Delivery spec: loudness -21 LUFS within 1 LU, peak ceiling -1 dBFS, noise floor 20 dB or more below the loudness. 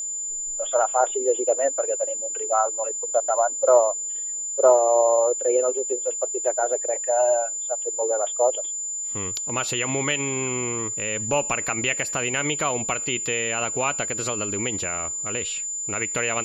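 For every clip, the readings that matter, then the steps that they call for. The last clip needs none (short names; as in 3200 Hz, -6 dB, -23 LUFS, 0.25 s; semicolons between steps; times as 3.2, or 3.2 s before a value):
steady tone 7100 Hz; tone level -27 dBFS; loudness -23.0 LUFS; peak -5.5 dBFS; loudness target -21.0 LUFS
-> notch 7100 Hz, Q 30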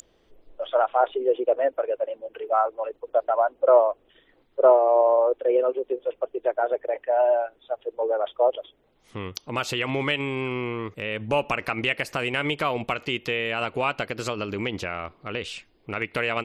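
steady tone none; loudness -24.5 LUFS; peak -6.0 dBFS; loudness target -21.0 LUFS
-> gain +3.5 dB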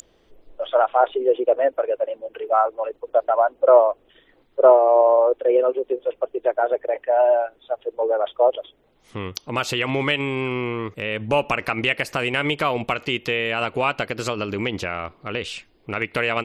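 loudness -21.0 LUFS; peak -2.5 dBFS; noise floor -60 dBFS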